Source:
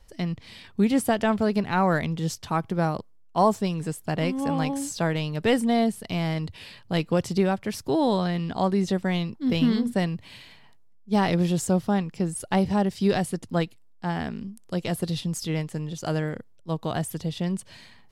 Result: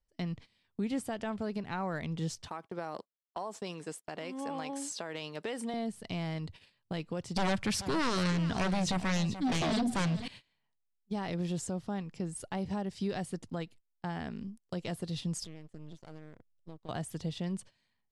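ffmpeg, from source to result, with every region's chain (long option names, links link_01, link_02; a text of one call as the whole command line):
ffmpeg -i in.wav -filter_complex "[0:a]asettb=1/sr,asplit=3[link_01][link_02][link_03];[link_01]atrim=end=2.484[link_04];[link_02]atrim=start=2.48:end=5.74,asetpts=PTS-STARTPTS,afade=type=in:duration=0.004:curve=qsin,afade=type=out:start_time=3.256:duration=0.004:curve=qsin,highpass=340,acompressor=threshold=-27dB:ratio=12:attack=3.2:release=140:knee=1:detection=peak[link_05];[link_03]atrim=start=5.736[link_06];[link_04][link_05]acrossfade=duration=0.004:curve1=hsin:curve2=qsin[link_07];[link_07][link_06]acrossfade=duration=0.004:curve1=qsin:curve2=hsin,asettb=1/sr,asplit=3[link_08][link_09][link_10];[link_08]atrim=end=7.364[link_11];[link_09]atrim=start=7.36:end=10.28,asetpts=PTS-STARTPTS,afade=type=in:duration=0.004:curve=qsin,afade=type=out:start_time=2.916:duration=0.004:curve=qsin,equalizer=frequency=460:width_type=o:width=2.5:gain=-7,aeval=exprs='0.178*sin(PI/2*3.98*val(0)/0.178)':channel_layout=same,aecho=1:1:433:0.2,atrim=end_sample=128772[link_12];[link_10]atrim=start=10.276[link_13];[link_11][link_12]acrossfade=duration=0.004:curve1=hsin:curve2=qsin[link_14];[link_14][link_13]acrossfade=duration=0.004:curve1=qsin:curve2=hsin,asettb=1/sr,asplit=3[link_15][link_16][link_17];[link_15]atrim=end=15.444[link_18];[link_16]atrim=start=15.44:end=16.89,asetpts=PTS-STARTPTS,afade=type=in:duration=0.004:curve=qsin,afade=type=out:start_time=1.446:duration=0.004:curve=qsin,lowshelf=frequency=140:gain=9,acompressor=threshold=-35dB:ratio=12:attack=3.2:release=140:knee=1:detection=peak,aeval=exprs='max(val(0),0)':channel_layout=same[link_19];[link_17]atrim=start=16.886[link_20];[link_18][link_19]acrossfade=duration=0.004:curve1=hsin:curve2=qsin[link_21];[link_21][link_20]acrossfade=duration=0.004:curve1=qsin:curve2=hsin,lowpass=frequency=10000:width=0.5412,lowpass=frequency=10000:width=1.3066,agate=range=-23dB:threshold=-40dB:ratio=16:detection=peak,alimiter=limit=-20.5dB:level=0:latency=1:release=297,volume=-5dB" out.wav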